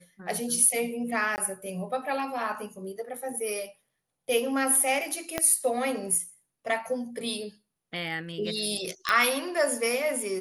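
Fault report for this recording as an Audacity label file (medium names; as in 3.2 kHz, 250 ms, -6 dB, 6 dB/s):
1.360000	1.380000	dropout 19 ms
5.380000	5.380000	pop -10 dBFS
9.090000	9.090000	pop -11 dBFS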